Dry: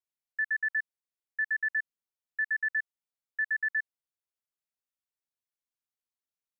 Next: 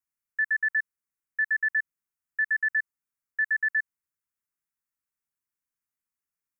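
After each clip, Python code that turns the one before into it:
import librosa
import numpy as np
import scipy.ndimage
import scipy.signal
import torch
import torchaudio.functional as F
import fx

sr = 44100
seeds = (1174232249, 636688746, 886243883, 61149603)

y = fx.fixed_phaser(x, sr, hz=1500.0, stages=4)
y = F.gain(torch.from_numpy(y), 4.5).numpy()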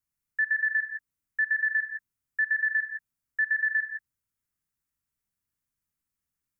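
y = fx.bass_treble(x, sr, bass_db=12, treble_db=2)
y = fx.rev_gated(y, sr, seeds[0], gate_ms=190, shape='rising', drr_db=5.0)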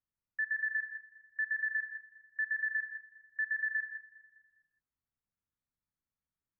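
y = scipy.signal.sosfilt(scipy.signal.butter(2, 1600.0, 'lowpass', fs=sr, output='sos'), x)
y = fx.echo_feedback(y, sr, ms=204, feedback_pct=50, wet_db=-21.0)
y = F.gain(torch.from_numpy(y), -4.0).numpy()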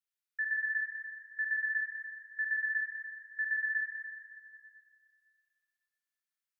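y = scipy.signal.sosfilt(scipy.signal.butter(4, 1400.0, 'highpass', fs=sr, output='sos'), x)
y = fx.rev_plate(y, sr, seeds[1], rt60_s=2.2, hf_ratio=0.85, predelay_ms=0, drr_db=0.0)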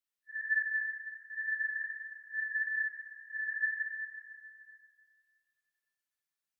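y = fx.phase_scramble(x, sr, seeds[2], window_ms=200)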